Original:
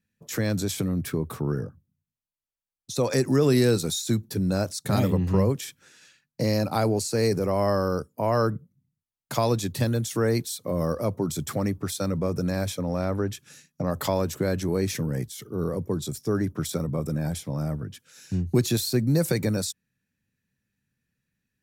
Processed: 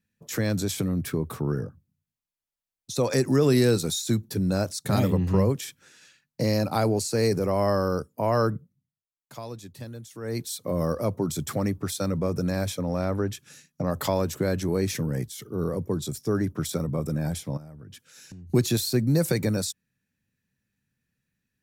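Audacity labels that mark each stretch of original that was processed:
8.560000	10.550000	duck −14.5 dB, fades 0.34 s
17.570000	18.500000	downward compressor 12 to 1, threshold −40 dBFS

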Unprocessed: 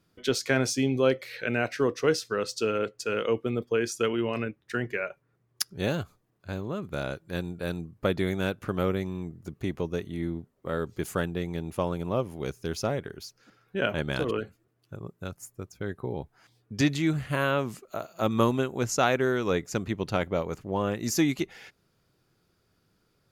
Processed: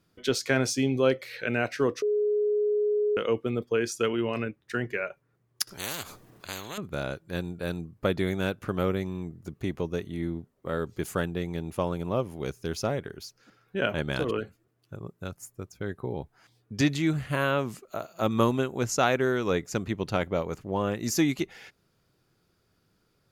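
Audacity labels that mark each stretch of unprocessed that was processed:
2.020000	3.170000	beep over 418 Hz −22 dBFS
5.670000	6.780000	every bin compressed towards the loudest bin 4 to 1

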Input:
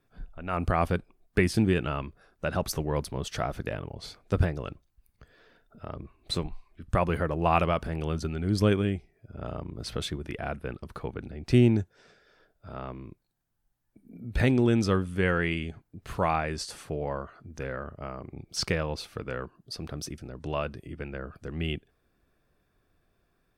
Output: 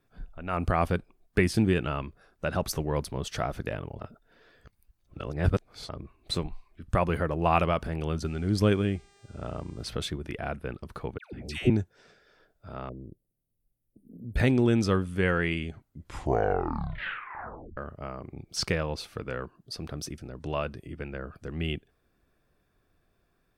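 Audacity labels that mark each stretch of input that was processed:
4.000000	5.890000	reverse
8.240000	9.850000	hum with harmonics 400 Hz, harmonics 23, −62 dBFS −3 dB per octave
11.180000	11.700000	all-pass dispersion lows, late by 146 ms, half as late at 930 Hz
12.890000	14.360000	elliptic band-stop filter 560–9,500 Hz
15.690000	15.690000	tape stop 2.08 s

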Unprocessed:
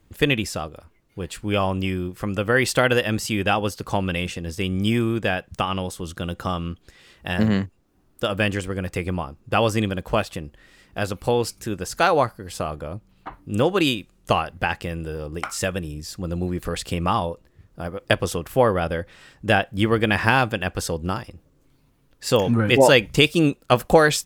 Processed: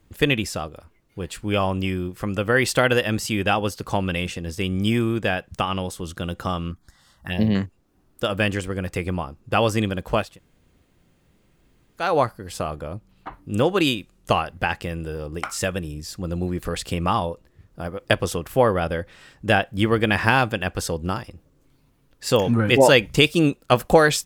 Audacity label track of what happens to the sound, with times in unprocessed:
6.710000	7.550000	phaser swept by the level lowest notch 380 Hz, up to 1,400 Hz, full sweep at −22 dBFS
10.280000	12.050000	fill with room tone, crossfade 0.24 s

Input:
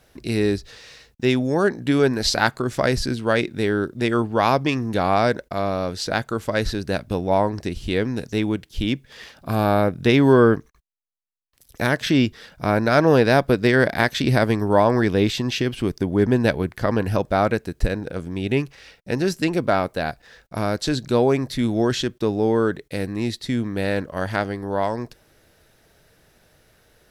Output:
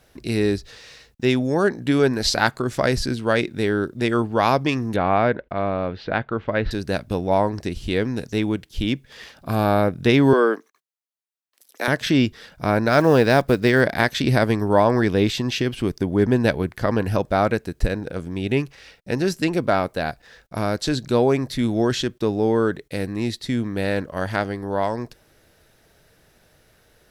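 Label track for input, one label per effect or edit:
4.960000	6.710000	inverse Chebyshev low-pass filter stop band from 11,000 Hz, stop band 70 dB
10.330000	11.880000	Bessel high-pass filter 410 Hz, order 8
12.880000	13.810000	one scale factor per block 7 bits

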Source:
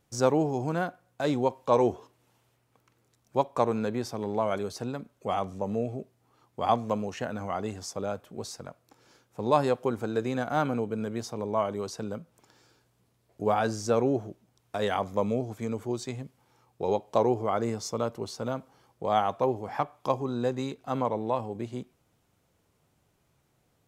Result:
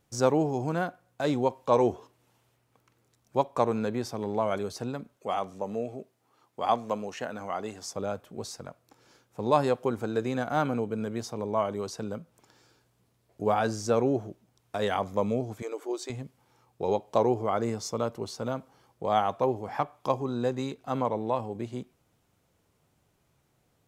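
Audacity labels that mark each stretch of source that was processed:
5.160000	7.850000	high-pass filter 310 Hz 6 dB per octave
15.620000	16.100000	linear-phase brick-wall high-pass 270 Hz

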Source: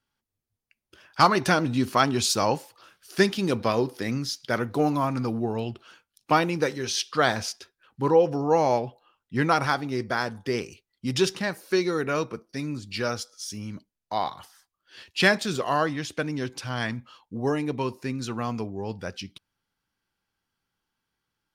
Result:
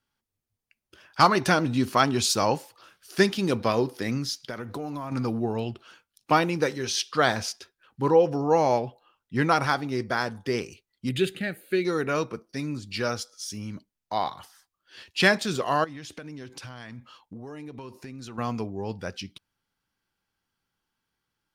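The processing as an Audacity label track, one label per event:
4.340000	5.120000	downward compressor 8 to 1, threshold −30 dBFS
11.090000	11.850000	phaser with its sweep stopped centre 2,400 Hz, stages 4
15.840000	18.380000	downward compressor 10 to 1, threshold −36 dBFS

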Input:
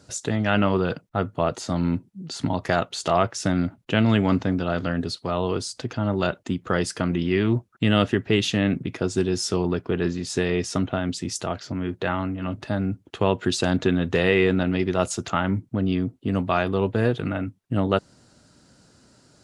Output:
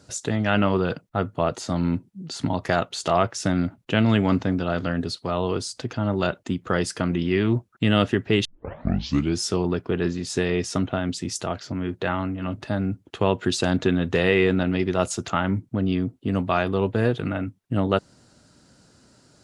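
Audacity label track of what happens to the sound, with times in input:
8.450000	8.450000	tape start 0.95 s

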